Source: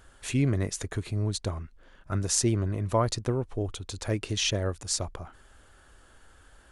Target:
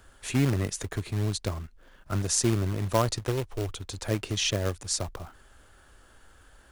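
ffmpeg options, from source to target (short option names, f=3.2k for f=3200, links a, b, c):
-filter_complex "[0:a]asettb=1/sr,asplit=3[a][b][c];[a]atrim=end=3.204[d];[b]atrim=start=3.2:end=3.74,asetpts=PTS-STARTPTS,afade=t=in:d=0.004:c=qsin,afade=t=out:st=0.536:d=0.004:c=qsin,equalizer=f=220:t=o:w=0.33:g=-14[e];[c]atrim=start=3.736[f];[d][e]acrossfade=d=0.004:c1=hsin:c2=qsin[g];[g][f]acrossfade=d=0.004:c1=qsin:c2=hsin,acrossover=split=120|1600[h][i][j];[i]acrusher=bits=2:mode=log:mix=0:aa=0.000001[k];[h][k][j]amix=inputs=3:normalize=0"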